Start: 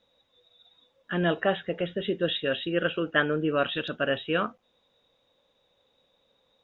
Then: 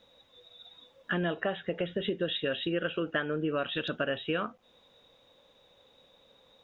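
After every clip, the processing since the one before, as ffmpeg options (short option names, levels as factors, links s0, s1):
-af "acompressor=threshold=0.0158:ratio=5,volume=2.24"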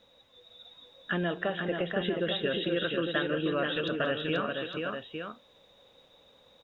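-af "aecho=1:1:182|327|482|855:0.141|0.188|0.596|0.422"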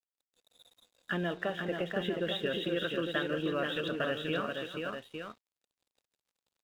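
-af "aeval=exprs='sgn(val(0))*max(abs(val(0))-0.00237,0)':c=same,volume=0.75"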